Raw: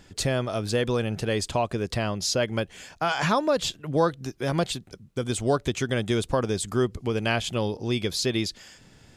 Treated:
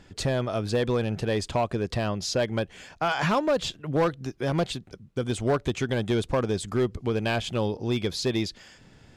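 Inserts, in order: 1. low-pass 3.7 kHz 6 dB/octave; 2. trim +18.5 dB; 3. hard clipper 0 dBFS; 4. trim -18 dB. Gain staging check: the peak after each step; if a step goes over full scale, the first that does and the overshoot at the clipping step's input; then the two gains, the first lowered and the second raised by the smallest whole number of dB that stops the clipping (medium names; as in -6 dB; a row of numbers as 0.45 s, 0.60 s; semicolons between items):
-9.5 dBFS, +9.0 dBFS, 0.0 dBFS, -18.0 dBFS; step 2, 9.0 dB; step 2 +9.5 dB, step 4 -9 dB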